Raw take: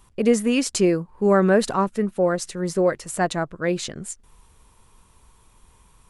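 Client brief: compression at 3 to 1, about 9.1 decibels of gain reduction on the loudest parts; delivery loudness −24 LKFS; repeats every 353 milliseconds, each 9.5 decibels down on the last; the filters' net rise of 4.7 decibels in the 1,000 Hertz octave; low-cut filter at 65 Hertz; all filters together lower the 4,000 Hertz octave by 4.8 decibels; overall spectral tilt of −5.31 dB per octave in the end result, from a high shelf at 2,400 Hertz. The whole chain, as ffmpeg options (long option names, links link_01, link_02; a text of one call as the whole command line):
ffmpeg -i in.wav -af "highpass=65,equalizer=frequency=1000:width_type=o:gain=7,highshelf=frequency=2400:gain=-4,equalizer=frequency=4000:width_type=o:gain=-3,acompressor=threshold=-24dB:ratio=3,aecho=1:1:353|706|1059|1412:0.335|0.111|0.0365|0.012,volume=3.5dB" out.wav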